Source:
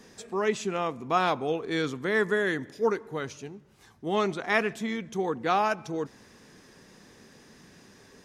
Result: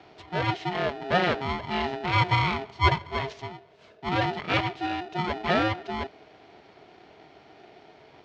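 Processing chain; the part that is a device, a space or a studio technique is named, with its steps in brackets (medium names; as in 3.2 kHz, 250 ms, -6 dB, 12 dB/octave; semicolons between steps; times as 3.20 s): 2.13–4.09 s: ten-band graphic EQ 250 Hz -6 dB, 500 Hz +9 dB, 8 kHz +12 dB; ring modulator pedal into a guitar cabinet (polarity switched at an audio rate 540 Hz; cabinet simulation 76–4000 Hz, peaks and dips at 420 Hz +9 dB, 640 Hz +9 dB, 1.1 kHz -6 dB)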